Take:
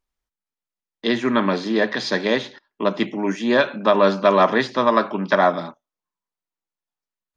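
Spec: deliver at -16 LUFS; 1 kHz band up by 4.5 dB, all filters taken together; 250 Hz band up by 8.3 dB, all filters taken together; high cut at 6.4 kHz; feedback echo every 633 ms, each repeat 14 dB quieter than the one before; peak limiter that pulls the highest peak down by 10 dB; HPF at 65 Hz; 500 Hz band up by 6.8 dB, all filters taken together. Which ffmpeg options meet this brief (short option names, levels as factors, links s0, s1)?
-af "highpass=65,lowpass=6400,equalizer=f=250:t=o:g=8.5,equalizer=f=500:t=o:g=5.5,equalizer=f=1000:t=o:g=3.5,alimiter=limit=0.422:level=0:latency=1,aecho=1:1:633|1266:0.2|0.0399,volume=1.26"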